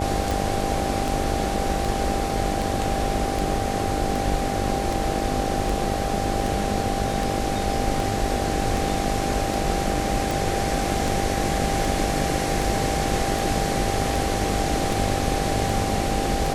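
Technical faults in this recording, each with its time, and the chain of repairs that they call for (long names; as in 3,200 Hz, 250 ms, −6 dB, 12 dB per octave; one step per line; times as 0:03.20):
mains buzz 50 Hz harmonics 15 −29 dBFS
scratch tick 78 rpm
whistle 790 Hz −28 dBFS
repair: click removal
hum removal 50 Hz, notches 15
notch filter 790 Hz, Q 30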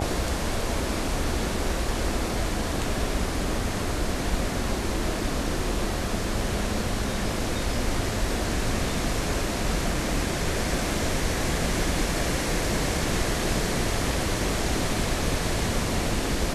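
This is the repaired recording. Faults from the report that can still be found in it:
none of them is left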